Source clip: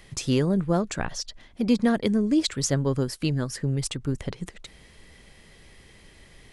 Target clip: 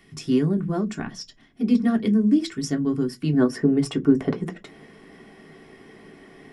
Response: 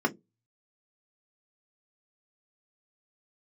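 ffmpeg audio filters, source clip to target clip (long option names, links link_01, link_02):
-filter_complex "[0:a]asetnsamples=nb_out_samples=441:pad=0,asendcmd='3.33 equalizer g 2',equalizer=frequency=640:width=0.42:gain=-12.5[link_01];[1:a]atrim=start_sample=2205[link_02];[link_01][link_02]afir=irnorm=-1:irlink=0,volume=-6dB"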